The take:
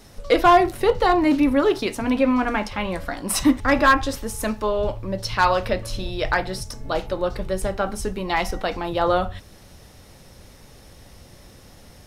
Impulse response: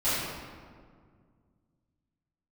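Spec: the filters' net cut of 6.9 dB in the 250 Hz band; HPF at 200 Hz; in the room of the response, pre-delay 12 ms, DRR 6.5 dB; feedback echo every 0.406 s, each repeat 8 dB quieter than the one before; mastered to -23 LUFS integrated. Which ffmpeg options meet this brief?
-filter_complex "[0:a]highpass=200,equalizer=f=250:t=o:g=-7.5,aecho=1:1:406|812|1218|1624|2030:0.398|0.159|0.0637|0.0255|0.0102,asplit=2[a][b];[1:a]atrim=start_sample=2205,adelay=12[c];[b][c]afir=irnorm=-1:irlink=0,volume=-19dB[d];[a][d]amix=inputs=2:normalize=0,volume=-1dB"

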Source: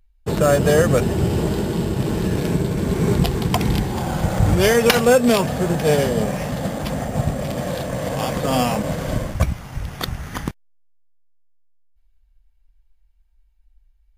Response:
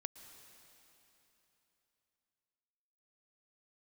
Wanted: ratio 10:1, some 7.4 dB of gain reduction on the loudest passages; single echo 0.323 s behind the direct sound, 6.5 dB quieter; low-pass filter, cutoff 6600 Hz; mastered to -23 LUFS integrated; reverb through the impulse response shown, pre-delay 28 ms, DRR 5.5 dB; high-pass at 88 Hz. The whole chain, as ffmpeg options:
-filter_complex "[0:a]highpass=88,lowpass=6.6k,acompressor=threshold=-17dB:ratio=10,aecho=1:1:323:0.473,asplit=2[a][b];[1:a]atrim=start_sample=2205,adelay=28[c];[b][c]afir=irnorm=-1:irlink=0,volume=-2dB[d];[a][d]amix=inputs=2:normalize=0,volume=-1dB"

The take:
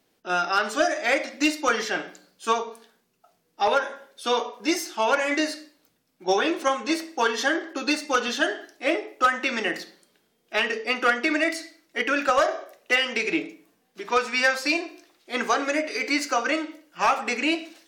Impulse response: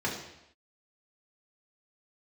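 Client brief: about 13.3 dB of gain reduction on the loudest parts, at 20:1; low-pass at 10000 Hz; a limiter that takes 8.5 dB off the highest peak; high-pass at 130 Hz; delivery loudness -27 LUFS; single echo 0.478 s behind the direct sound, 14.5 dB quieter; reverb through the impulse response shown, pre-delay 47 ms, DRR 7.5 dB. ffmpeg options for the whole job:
-filter_complex "[0:a]highpass=130,lowpass=10k,acompressor=threshold=-29dB:ratio=20,alimiter=level_in=1dB:limit=-24dB:level=0:latency=1,volume=-1dB,aecho=1:1:478:0.188,asplit=2[a][b];[1:a]atrim=start_sample=2205,adelay=47[c];[b][c]afir=irnorm=-1:irlink=0,volume=-16dB[d];[a][d]amix=inputs=2:normalize=0,volume=8dB"

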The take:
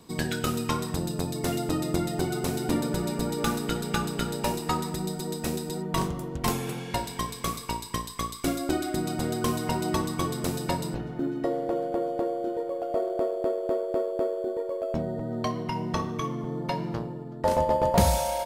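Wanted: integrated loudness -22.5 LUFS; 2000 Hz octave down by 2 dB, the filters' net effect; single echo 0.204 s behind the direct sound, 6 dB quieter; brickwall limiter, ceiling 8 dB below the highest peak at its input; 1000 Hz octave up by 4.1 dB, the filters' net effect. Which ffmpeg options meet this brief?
-af "equalizer=f=1k:t=o:g=6,equalizer=f=2k:t=o:g=-5.5,alimiter=limit=-17dB:level=0:latency=1,aecho=1:1:204:0.501,volume=6dB"

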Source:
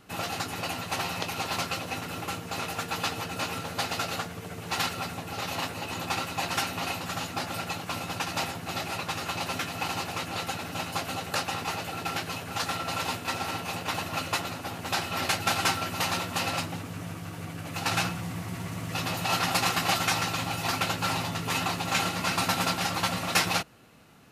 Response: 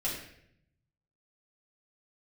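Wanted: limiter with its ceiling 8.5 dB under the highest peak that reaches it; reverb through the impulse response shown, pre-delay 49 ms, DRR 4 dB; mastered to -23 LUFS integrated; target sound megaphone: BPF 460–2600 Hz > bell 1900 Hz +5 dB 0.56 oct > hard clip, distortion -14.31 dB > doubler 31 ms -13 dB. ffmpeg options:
-filter_complex "[0:a]alimiter=limit=-18dB:level=0:latency=1,asplit=2[a][b];[1:a]atrim=start_sample=2205,adelay=49[c];[b][c]afir=irnorm=-1:irlink=0,volume=-9dB[d];[a][d]amix=inputs=2:normalize=0,highpass=460,lowpass=2.6k,equalizer=f=1.9k:t=o:w=0.56:g=5,asoftclip=type=hard:threshold=-26.5dB,asplit=2[e][f];[f]adelay=31,volume=-13dB[g];[e][g]amix=inputs=2:normalize=0,volume=9dB"

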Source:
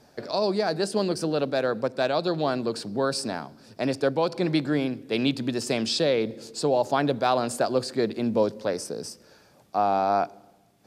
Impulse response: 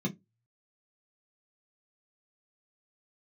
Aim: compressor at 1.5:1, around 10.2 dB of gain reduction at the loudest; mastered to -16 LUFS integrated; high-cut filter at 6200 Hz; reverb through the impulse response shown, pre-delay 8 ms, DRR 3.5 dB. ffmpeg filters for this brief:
-filter_complex "[0:a]lowpass=6.2k,acompressor=threshold=-48dB:ratio=1.5,asplit=2[a][b];[1:a]atrim=start_sample=2205,adelay=8[c];[b][c]afir=irnorm=-1:irlink=0,volume=-7dB[d];[a][d]amix=inputs=2:normalize=0,volume=13dB"

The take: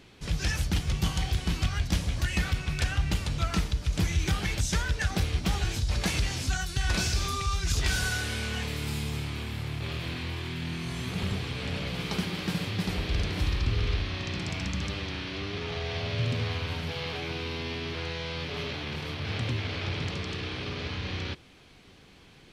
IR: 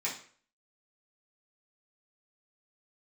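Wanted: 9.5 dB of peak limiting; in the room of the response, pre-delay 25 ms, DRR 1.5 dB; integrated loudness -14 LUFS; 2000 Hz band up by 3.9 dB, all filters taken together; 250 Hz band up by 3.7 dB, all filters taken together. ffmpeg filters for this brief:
-filter_complex "[0:a]equalizer=f=250:t=o:g=5.5,equalizer=f=2k:t=o:g=5,alimiter=limit=-22.5dB:level=0:latency=1,asplit=2[a][b];[1:a]atrim=start_sample=2205,adelay=25[c];[b][c]afir=irnorm=-1:irlink=0,volume=-6.5dB[d];[a][d]amix=inputs=2:normalize=0,volume=16.5dB"

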